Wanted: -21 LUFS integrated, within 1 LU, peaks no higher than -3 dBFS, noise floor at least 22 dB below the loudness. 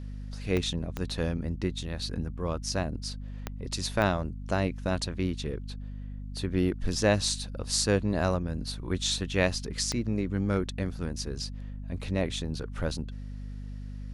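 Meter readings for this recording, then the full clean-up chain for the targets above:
clicks found 5; hum 50 Hz; highest harmonic 250 Hz; hum level -36 dBFS; loudness -30.5 LUFS; peak level -8.5 dBFS; loudness target -21.0 LUFS
-> de-click; de-hum 50 Hz, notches 5; trim +9.5 dB; peak limiter -3 dBFS

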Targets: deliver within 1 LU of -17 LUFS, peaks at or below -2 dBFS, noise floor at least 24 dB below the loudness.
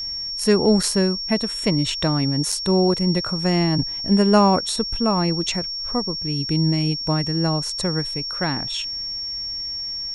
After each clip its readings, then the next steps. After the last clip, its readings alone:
dropouts 2; longest dropout 3.8 ms; steady tone 5.5 kHz; tone level -26 dBFS; loudness -21.0 LUFS; peak level -4.5 dBFS; loudness target -17.0 LUFS
-> interpolate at 0.83/2.52 s, 3.8 ms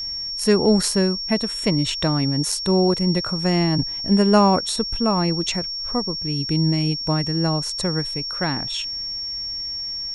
dropouts 0; steady tone 5.5 kHz; tone level -26 dBFS
-> band-stop 5.5 kHz, Q 30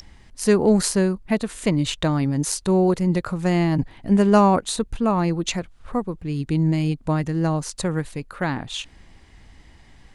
steady tone not found; loudness -22.0 LUFS; peak level -5.5 dBFS; loudness target -17.0 LUFS
-> trim +5 dB; peak limiter -2 dBFS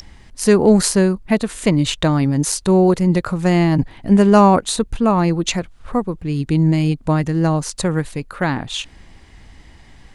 loudness -17.0 LUFS; peak level -2.0 dBFS; noise floor -45 dBFS

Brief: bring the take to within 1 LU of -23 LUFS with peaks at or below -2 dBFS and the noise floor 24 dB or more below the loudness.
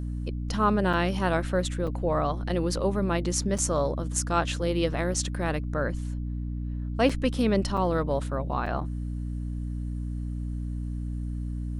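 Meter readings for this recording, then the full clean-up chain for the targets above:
dropouts 7; longest dropout 5.2 ms; hum 60 Hz; highest harmonic 300 Hz; hum level -29 dBFS; loudness -28.5 LUFS; peak level -9.0 dBFS; loudness target -23.0 LUFS
-> interpolate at 0.93/1.87/3.58/5.14/7.09/7.77/8.66 s, 5.2 ms; de-hum 60 Hz, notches 5; trim +5.5 dB

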